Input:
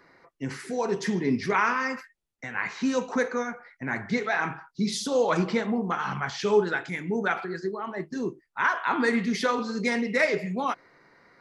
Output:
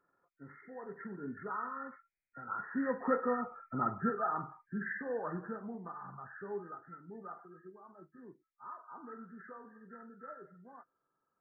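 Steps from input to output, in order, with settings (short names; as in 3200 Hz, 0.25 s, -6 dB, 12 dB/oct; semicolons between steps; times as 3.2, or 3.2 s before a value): nonlinear frequency compression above 1200 Hz 4:1; Doppler pass-by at 3.54, 9 m/s, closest 3.8 m; gain -2.5 dB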